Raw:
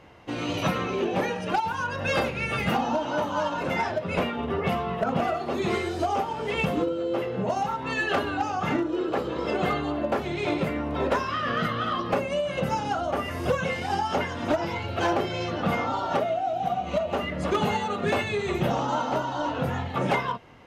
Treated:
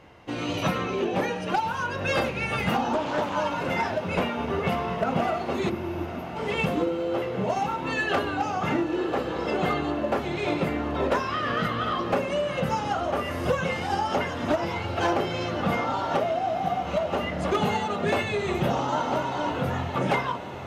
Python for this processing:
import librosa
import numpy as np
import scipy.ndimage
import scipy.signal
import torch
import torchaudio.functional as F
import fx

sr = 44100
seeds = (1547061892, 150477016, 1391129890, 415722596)

y = fx.spec_erase(x, sr, start_s=5.69, length_s=0.67, low_hz=370.0, high_hz=11000.0)
y = fx.echo_diffused(y, sr, ms=1061, feedback_pct=72, wet_db=-13)
y = fx.doppler_dist(y, sr, depth_ms=0.37, at=(2.93, 3.36))